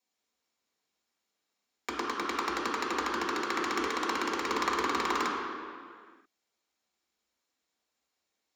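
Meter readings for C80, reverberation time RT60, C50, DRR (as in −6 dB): 2.0 dB, non-exponential decay, 0.5 dB, −5.0 dB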